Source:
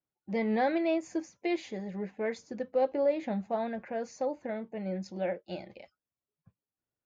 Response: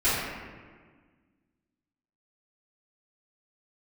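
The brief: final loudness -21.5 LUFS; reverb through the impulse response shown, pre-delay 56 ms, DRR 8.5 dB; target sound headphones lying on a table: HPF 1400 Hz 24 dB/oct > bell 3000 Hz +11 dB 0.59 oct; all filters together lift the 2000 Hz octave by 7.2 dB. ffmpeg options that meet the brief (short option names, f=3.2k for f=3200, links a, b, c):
-filter_complex "[0:a]equalizer=f=2k:t=o:g=5.5,asplit=2[a][b];[1:a]atrim=start_sample=2205,adelay=56[c];[b][c]afir=irnorm=-1:irlink=0,volume=-23.5dB[d];[a][d]amix=inputs=2:normalize=0,highpass=f=1.4k:w=0.5412,highpass=f=1.4k:w=1.3066,equalizer=f=3k:t=o:w=0.59:g=11,volume=16.5dB"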